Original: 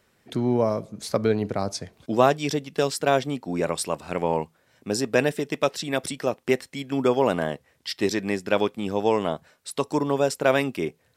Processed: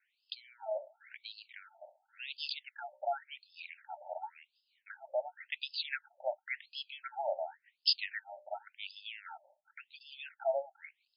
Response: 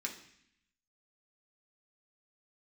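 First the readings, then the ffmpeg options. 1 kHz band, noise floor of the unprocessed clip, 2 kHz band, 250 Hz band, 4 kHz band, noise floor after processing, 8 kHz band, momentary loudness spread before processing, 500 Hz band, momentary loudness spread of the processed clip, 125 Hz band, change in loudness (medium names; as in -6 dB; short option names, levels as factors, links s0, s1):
-14.5 dB, -66 dBFS, -12.0 dB, under -40 dB, -4.5 dB, -82 dBFS, under -40 dB, 9 LU, -17.5 dB, 17 LU, under -40 dB, -14.0 dB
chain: -filter_complex "[0:a]agate=range=0.447:threshold=0.00447:ratio=16:detection=peak,bandreject=f=60:t=h:w=6,bandreject=f=120:t=h:w=6,bandreject=f=180:t=h:w=6,bandreject=f=240:t=h:w=6,bandreject=f=300:t=h:w=6,bandreject=f=360:t=h:w=6,bandreject=f=420:t=h:w=6,bandreject=f=480:t=h:w=6,bandreject=f=540:t=h:w=6,bandreject=f=600:t=h:w=6,acrossover=split=480|3000[s0][s1][s2];[s1]acompressor=threshold=0.0141:ratio=2.5[s3];[s0][s3][s2]amix=inputs=3:normalize=0,acrossover=split=230[s4][s5];[s5]aexciter=amount=5.5:drive=8.4:freq=5500[s6];[s4][s6]amix=inputs=2:normalize=0,asuperstop=centerf=1100:order=20:qfactor=2.7,afftfilt=real='re*between(b*sr/1024,750*pow(3700/750,0.5+0.5*sin(2*PI*0.92*pts/sr))/1.41,750*pow(3700/750,0.5+0.5*sin(2*PI*0.92*pts/sr))*1.41)':imag='im*between(b*sr/1024,750*pow(3700/750,0.5+0.5*sin(2*PI*0.92*pts/sr))/1.41,750*pow(3700/750,0.5+0.5*sin(2*PI*0.92*pts/sr))*1.41)':win_size=1024:overlap=0.75"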